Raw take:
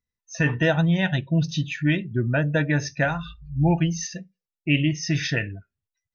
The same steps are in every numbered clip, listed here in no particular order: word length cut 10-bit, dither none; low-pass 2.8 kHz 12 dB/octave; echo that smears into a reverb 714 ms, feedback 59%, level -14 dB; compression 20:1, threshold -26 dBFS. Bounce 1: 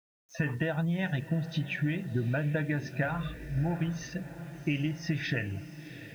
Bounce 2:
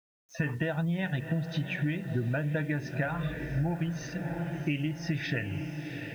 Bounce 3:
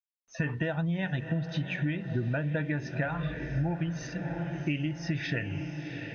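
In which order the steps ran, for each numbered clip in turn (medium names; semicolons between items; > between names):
low-pass > compression > echo that smears into a reverb > word length cut; echo that smears into a reverb > compression > low-pass > word length cut; echo that smears into a reverb > compression > word length cut > low-pass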